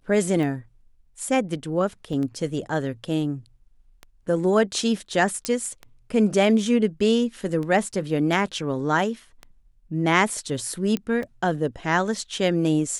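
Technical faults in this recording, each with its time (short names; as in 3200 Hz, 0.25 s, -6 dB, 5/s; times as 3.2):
tick 33 1/3 rpm
2.13 gap 3.5 ms
5.45 pop -9 dBFS
10.97 pop -14 dBFS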